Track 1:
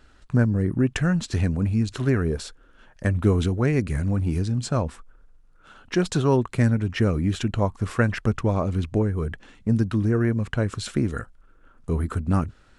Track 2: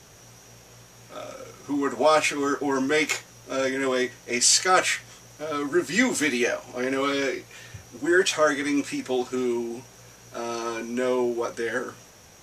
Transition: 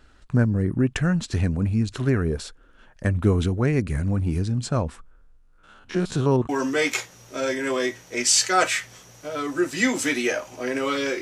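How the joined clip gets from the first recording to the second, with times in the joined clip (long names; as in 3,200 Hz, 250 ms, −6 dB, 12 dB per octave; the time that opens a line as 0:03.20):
track 1
0:05.01–0:06.49: spectrum averaged block by block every 50 ms
0:06.49: continue with track 2 from 0:02.65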